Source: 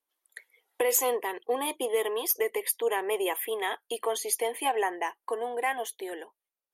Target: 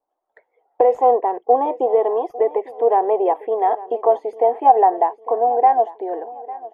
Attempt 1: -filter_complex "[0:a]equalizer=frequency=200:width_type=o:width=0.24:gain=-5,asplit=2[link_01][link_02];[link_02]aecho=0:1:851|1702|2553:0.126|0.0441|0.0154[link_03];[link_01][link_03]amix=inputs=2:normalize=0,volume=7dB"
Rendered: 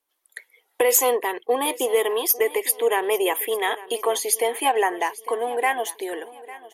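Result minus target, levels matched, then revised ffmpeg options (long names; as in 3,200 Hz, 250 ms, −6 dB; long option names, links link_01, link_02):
1,000 Hz band −5.5 dB
-filter_complex "[0:a]lowpass=frequency=740:width_type=q:width=4.2,equalizer=frequency=200:width_type=o:width=0.24:gain=-5,asplit=2[link_01][link_02];[link_02]aecho=0:1:851|1702|2553:0.126|0.0441|0.0154[link_03];[link_01][link_03]amix=inputs=2:normalize=0,volume=7dB"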